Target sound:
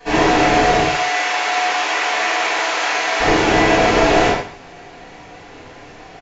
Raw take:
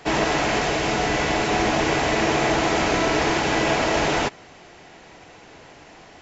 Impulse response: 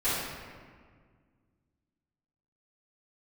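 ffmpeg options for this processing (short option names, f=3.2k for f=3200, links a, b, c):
-filter_complex "[0:a]asettb=1/sr,asplit=3[a][b][c];[a]atrim=end=0.824[d];[b]atrim=start=0.82:end=3.2,asetpts=PTS-STARTPTS,afade=t=in:d=0.004:c=qsin,afade=t=out:st=2.376:d=0.004:c=qsin,highpass=990[e];[c]atrim=start=3.196[f];[d][e]acrossfade=d=0.004:c1=hsin:c2=qsin[g];[g][f]acrossfade=d=0.004:c1=qsin:c2=hsin,aecho=1:1:136:0.168[h];[1:a]atrim=start_sample=2205,atrim=end_sample=6615[i];[h][i]afir=irnorm=-1:irlink=0,aresample=16000,aresample=44100,volume=-3.5dB"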